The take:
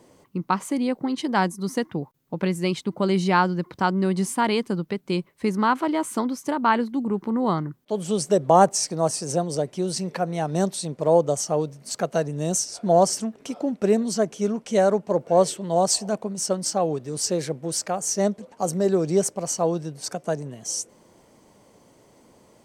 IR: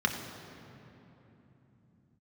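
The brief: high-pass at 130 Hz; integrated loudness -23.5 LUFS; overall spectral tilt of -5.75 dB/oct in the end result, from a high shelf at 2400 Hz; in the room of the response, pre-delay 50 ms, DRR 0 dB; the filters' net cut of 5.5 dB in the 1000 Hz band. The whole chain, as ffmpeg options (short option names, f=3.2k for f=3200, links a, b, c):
-filter_complex "[0:a]highpass=130,equalizer=f=1k:t=o:g=-7,highshelf=f=2.4k:g=-4,asplit=2[a][b];[1:a]atrim=start_sample=2205,adelay=50[c];[b][c]afir=irnorm=-1:irlink=0,volume=-10dB[d];[a][d]amix=inputs=2:normalize=0,volume=-1dB"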